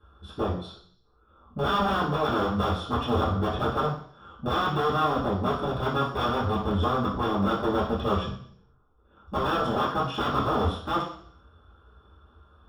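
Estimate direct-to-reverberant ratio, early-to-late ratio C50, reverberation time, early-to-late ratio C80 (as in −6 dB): −10.5 dB, 5.0 dB, 0.60 s, 9.0 dB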